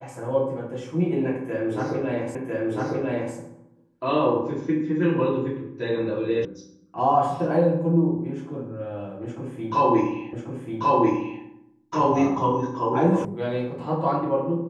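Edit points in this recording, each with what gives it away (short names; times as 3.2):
2.35 repeat of the last 1 s
6.45 sound cut off
10.33 repeat of the last 1.09 s
13.25 sound cut off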